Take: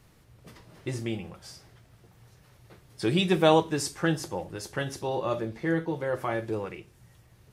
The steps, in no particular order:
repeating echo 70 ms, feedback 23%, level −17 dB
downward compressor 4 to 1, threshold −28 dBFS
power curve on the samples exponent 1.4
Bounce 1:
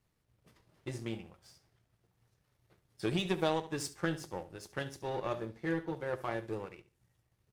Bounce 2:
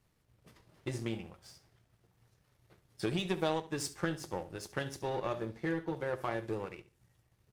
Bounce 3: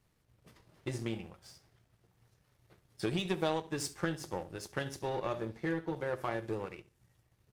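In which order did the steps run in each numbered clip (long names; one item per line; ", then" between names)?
power curve on the samples, then repeating echo, then downward compressor
downward compressor, then power curve on the samples, then repeating echo
repeating echo, then downward compressor, then power curve on the samples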